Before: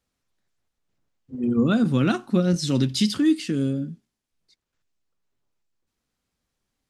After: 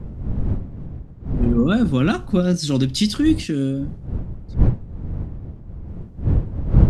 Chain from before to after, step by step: wind noise 110 Hz -25 dBFS; trim +2.5 dB

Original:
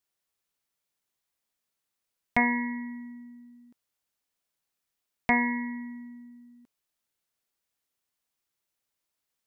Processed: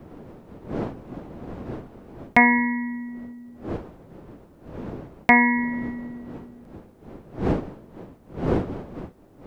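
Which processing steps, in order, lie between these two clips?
wind noise 330 Hz -41 dBFS; bass shelf 130 Hz -5.5 dB; trim +9 dB

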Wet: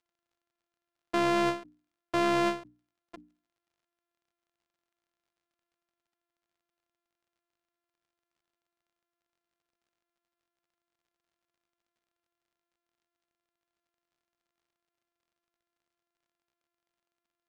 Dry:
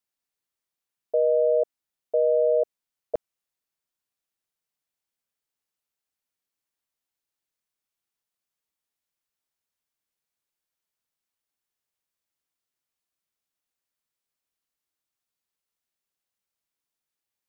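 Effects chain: sorted samples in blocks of 128 samples; tone controls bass -12 dB, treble -6 dB; hum notches 60/120/180/240/300 Hz; in parallel at -11 dB: wavefolder -22.5 dBFS; on the sum: crackle 61 per s -61 dBFS; distance through air 57 m; endings held to a fixed fall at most 160 dB/s; trim -3 dB

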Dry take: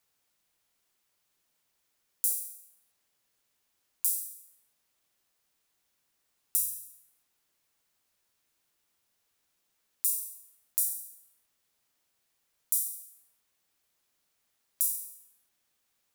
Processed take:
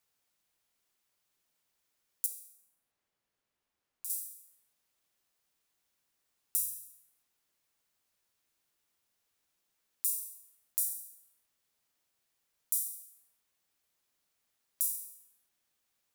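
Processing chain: 2.26–4.10 s: treble shelf 3.3 kHz -11 dB; trim -3.5 dB

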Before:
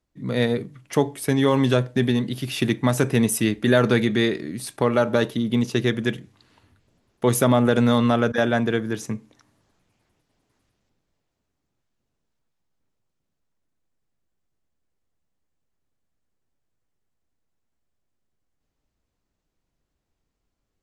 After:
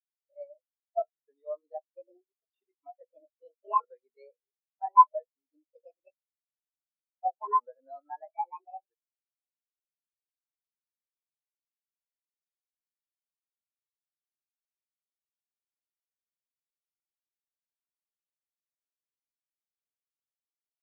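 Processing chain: sawtooth pitch modulation +9.5 st, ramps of 1266 ms; Chebyshev band-pass 650–9600 Hz, order 2; spectral contrast expander 4:1; trim +1.5 dB

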